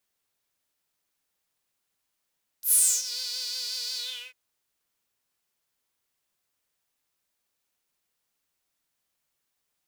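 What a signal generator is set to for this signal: synth patch with vibrato B4, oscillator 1 triangle, filter highpass, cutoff 2.3 kHz, Q 6.3, filter envelope 2.5 oct, filter decay 0.49 s, filter sustain 40%, attack 91 ms, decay 0.30 s, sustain -20 dB, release 0.37 s, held 1.33 s, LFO 5.6 Hz, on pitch 50 cents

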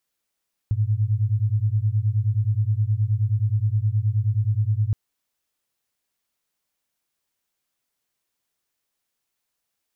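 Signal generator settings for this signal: beating tones 102 Hz, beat 9.5 Hz, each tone -21.5 dBFS 4.22 s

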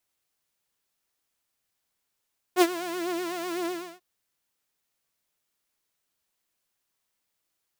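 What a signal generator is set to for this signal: synth patch with vibrato F4, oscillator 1 saw, detune 9 cents, sub -29 dB, noise -16.5 dB, filter highpass, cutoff 150 Hz, Q 1.1, filter envelope 1.5 oct, attack 56 ms, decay 0.05 s, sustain -15 dB, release 0.34 s, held 1.10 s, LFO 8 Hz, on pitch 89 cents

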